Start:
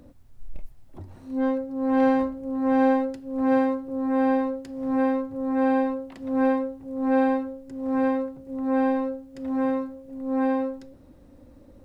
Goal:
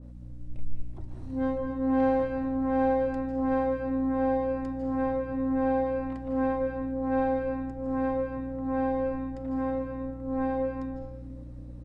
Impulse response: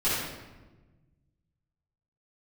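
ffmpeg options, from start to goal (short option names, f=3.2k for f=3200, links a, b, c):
-filter_complex "[0:a]aeval=exprs='val(0)+0.0112*(sin(2*PI*60*n/s)+sin(2*PI*2*60*n/s)/2+sin(2*PI*3*60*n/s)/3+sin(2*PI*4*60*n/s)/4+sin(2*PI*5*60*n/s)/5)':c=same,aresample=22050,aresample=44100,asplit=2[a][b];[1:a]atrim=start_sample=2205,adelay=145[c];[b][c]afir=irnorm=-1:irlink=0,volume=-15dB[d];[a][d]amix=inputs=2:normalize=0,adynamicequalizer=threshold=0.00398:dfrequency=2000:dqfactor=0.7:tfrequency=2000:tqfactor=0.7:attack=5:release=100:ratio=0.375:range=3:mode=cutabove:tftype=highshelf,volume=-4.5dB"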